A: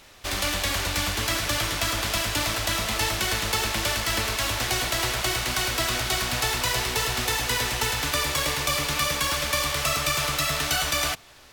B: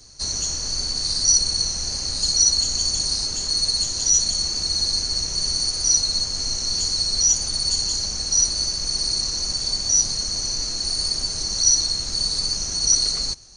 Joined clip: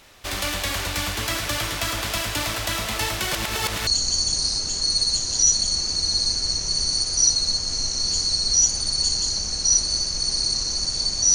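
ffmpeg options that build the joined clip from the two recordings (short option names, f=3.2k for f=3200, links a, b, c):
-filter_complex "[0:a]apad=whole_dur=11.34,atrim=end=11.34,asplit=2[a][b];[a]atrim=end=3.332[c];[b]atrim=start=3.328:end=3.872,asetpts=PTS-STARTPTS,areverse[d];[1:a]atrim=start=2.538:end=10.01[e];[c][d]acrossfade=d=0.004:c1=hsin:c2=hsin[f];[f][e]acrossfade=d=0.004:c1=hsin:c2=hsin"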